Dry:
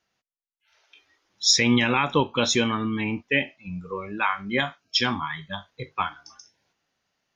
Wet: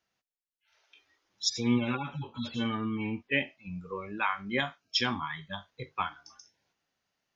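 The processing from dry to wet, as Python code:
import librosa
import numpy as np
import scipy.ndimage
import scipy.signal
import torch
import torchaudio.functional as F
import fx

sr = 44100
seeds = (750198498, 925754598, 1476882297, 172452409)

y = fx.hpss_only(x, sr, part='harmonic', at=(1.48, 3.31), fade=0.02)
y = y * librosa.db_to_amplitude(-5.5)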